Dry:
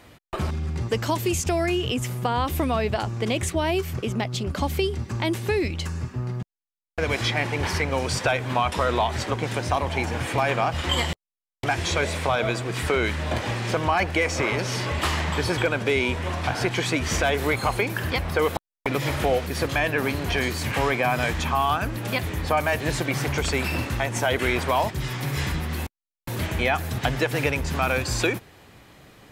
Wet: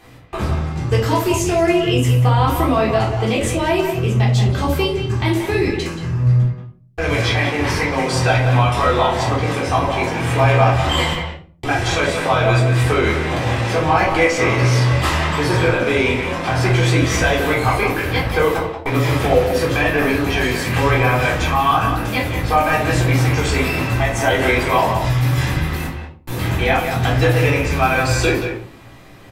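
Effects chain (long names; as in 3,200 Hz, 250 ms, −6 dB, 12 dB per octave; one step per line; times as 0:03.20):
double-tracking delay 18 ms −12 dB
far-end echo of a speakerphone 180 ms, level −6 dB
rectangular room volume 360 cubic metres, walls furnished, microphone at 3.7 metres
level −1 dB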